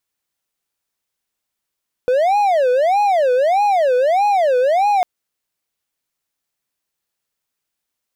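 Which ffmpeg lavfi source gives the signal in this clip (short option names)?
-f lavfi -i "aevalsrc='0.316*(1-4*abs(mod((662.5*t-167.5/(2*PI*1.6)*sin(2*PI*1.6*t))+0.25,1)-0.5))':d=2.95:s=44100"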